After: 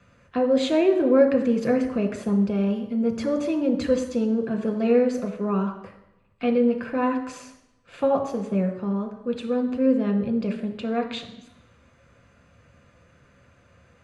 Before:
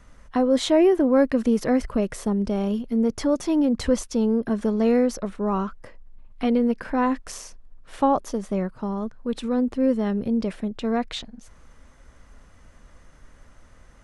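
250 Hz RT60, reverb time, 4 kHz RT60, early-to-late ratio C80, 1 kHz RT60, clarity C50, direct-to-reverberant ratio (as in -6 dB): 0.85 s, 0.85 s, 0.90 s, 11.5 dB, 0.85 s, 9.5 dB, 4.0 dB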